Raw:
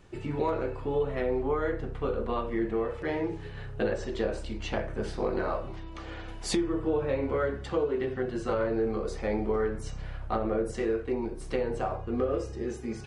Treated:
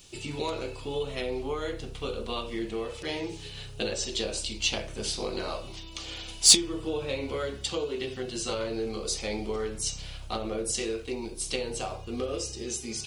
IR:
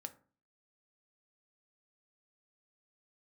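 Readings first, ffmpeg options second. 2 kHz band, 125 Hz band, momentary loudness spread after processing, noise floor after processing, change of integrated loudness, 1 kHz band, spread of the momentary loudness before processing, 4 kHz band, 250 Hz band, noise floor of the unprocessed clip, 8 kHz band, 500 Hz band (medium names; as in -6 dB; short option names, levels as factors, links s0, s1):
+1.0 dB, -4.0 dB, 8 LU, -42 dBFS, +1.5 dB, -4.0 dB, 7 LU, +16.0 dB, -4.0 dB, -41 dBFS, +19.5 dB, -4.0 dB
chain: -af "aexciter=amount=10:drive=4.6:freq=2600,aeval=exprs='1.12*(cos(1*acos(clip(val(0)/1.12,-1,1)))-cos(1*PI/2))+0.0316*(cos(7*acos(clip(val(0)/1.12,-1,1)))-cos(7*PI/2))':c=same,volume=0.794"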